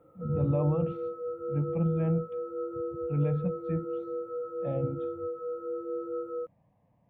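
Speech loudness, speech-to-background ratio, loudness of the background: -31.5 LUFS, 4.5 dB, -36.0 LUFS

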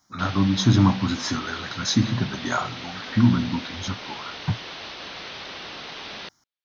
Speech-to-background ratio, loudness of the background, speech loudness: 11.5 dB, -35.5 LUFS, -24.0 LUFS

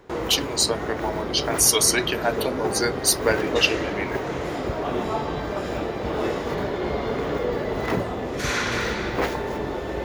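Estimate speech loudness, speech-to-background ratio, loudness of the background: -22.0 LUFS, 5.5 dB, -27.5 LUFS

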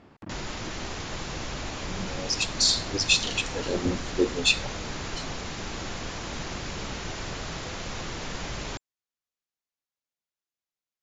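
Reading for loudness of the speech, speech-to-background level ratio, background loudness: -25.0 LUFS, 10.0 dB, -35.0 LUFS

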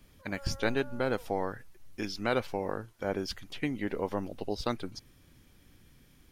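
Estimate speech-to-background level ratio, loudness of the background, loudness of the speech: 17.0 dB, -51.0 LUFS, -34.0 LUFS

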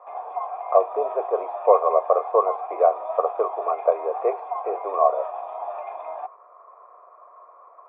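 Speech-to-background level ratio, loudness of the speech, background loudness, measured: 9.5 dB, -23.0 LUFS, -32.5 LUFS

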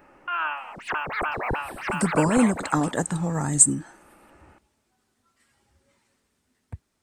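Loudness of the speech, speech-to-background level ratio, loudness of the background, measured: -22.0 LUFS, 7.5 dB, -29.5 LUFS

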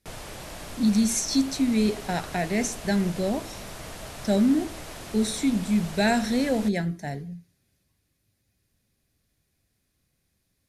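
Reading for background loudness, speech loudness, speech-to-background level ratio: -39.5 LUFS, -25.5 LUFS, 14.0 dB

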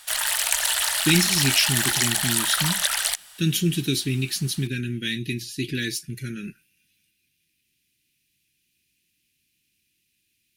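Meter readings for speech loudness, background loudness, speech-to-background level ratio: -25.5 LUFS, -21.5 LUFS, -4.0 dB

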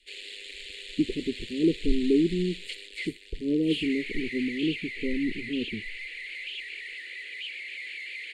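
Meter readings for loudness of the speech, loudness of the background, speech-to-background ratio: -29.0 LUFS, -37.0 LUFS, 8.0 dB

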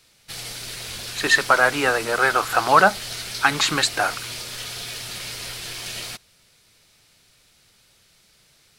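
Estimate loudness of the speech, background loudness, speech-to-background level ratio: -19.0 LUFS, -31.0 LUFS, 12.0 dB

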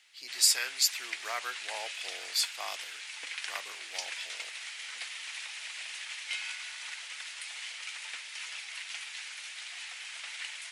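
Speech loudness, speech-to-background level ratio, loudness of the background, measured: -30.0 LUFS, 9.0 dB, -39.0 LUFS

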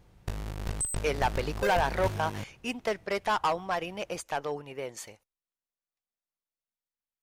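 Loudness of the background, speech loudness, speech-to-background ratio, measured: -35.5 LUFS, -31.5 LUFS, 4.0 dB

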